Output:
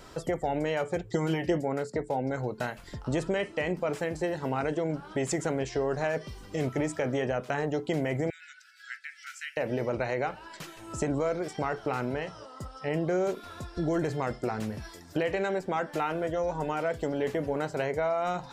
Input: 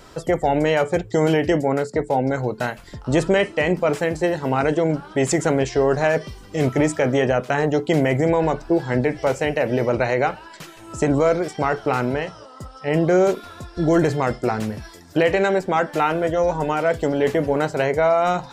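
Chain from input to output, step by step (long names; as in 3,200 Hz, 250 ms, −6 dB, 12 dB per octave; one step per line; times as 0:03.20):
downward compressor 2 to 1, threshold −27 dBFS, peak gain reduction 8 dB
0:01.11–0:01.58: comb filter 5.6 ms, depth 57%
0:08.30–0:09.57: linear-phase brick-wall high-pass 1,300 Hz
level −4 dB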